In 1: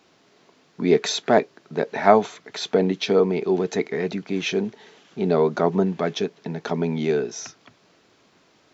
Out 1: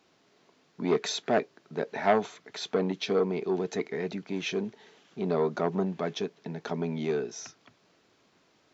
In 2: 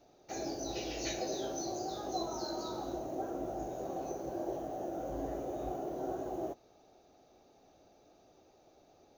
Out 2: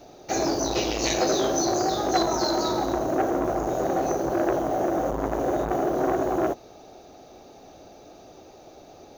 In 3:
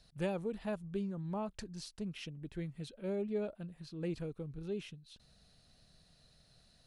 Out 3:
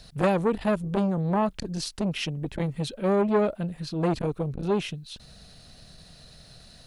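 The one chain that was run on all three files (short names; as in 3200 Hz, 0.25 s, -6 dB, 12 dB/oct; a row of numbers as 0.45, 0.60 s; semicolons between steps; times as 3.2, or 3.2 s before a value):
core saturation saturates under 860 Hz; normalise peaks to -9 dBFS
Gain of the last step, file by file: -7.0, +16.0, +16.0 dB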